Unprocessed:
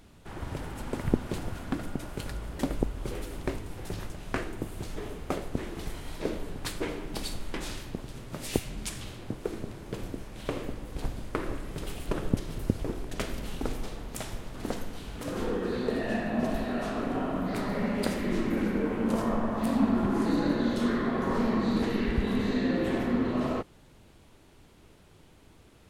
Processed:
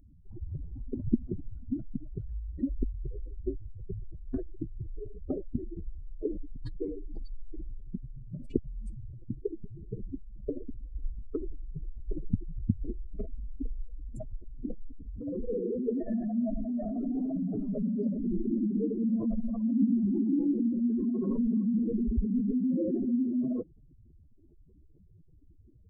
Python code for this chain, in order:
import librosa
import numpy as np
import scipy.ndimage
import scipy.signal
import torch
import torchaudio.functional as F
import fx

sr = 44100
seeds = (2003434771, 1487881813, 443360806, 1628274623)

y = fx.spec_expand(x, sr, power=3.9)
y = fx.band_shelf(y, sr, hz=2100.0, db=-8.5, octaves=2.7)